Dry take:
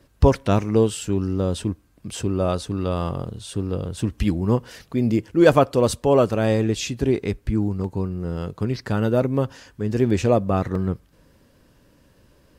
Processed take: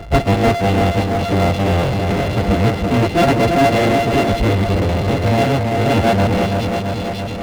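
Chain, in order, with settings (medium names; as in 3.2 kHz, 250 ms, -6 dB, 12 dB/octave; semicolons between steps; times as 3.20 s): sorted samples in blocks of 64 samples; peaking EQ 1.3 kHz -9 dB 0.82 oct; plain phase-vocoder stretch 0.59×; distance through air 340 m; two-band feedback delay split 2.6 kHz, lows 334 ms, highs 544 ms, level -8 dB; power-law waveshaper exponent 0.5; trim +3 dB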